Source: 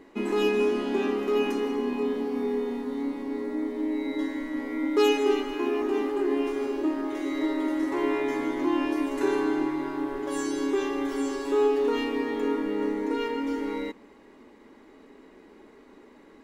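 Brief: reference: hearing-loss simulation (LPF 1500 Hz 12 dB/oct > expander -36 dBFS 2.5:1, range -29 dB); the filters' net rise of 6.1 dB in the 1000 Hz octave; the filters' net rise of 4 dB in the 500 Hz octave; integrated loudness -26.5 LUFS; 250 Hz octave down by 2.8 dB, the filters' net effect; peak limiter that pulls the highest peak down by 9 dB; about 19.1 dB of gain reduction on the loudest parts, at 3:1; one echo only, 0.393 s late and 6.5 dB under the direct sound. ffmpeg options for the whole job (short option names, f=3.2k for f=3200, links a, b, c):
-af "equalizer=f=250:t=o:g=-7,equalizer=f=500:t=o:g=7,equalizer=f=1k:t=o:g=6.5,acompressor=threshold=-42dB:ratio=3,alimiter=level_in=10.5dB:limit=-24dB:level=0:latency=1,volume=-10.5dB,lowpass=1.5k,aecho=1:1:393:0.473,agate=range=-29dB:threshold=-36dB:ratio=2.5,volume=20dB"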